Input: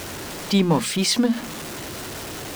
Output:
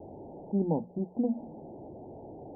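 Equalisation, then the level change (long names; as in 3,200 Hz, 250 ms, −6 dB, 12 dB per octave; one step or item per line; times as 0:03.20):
Butterworth low-pass 870 Hz 96 dB per octave
low-shelf EQ 87 Hz −9.5 dB
mains-hum notches 60/120/180 Hz
−8.0 dB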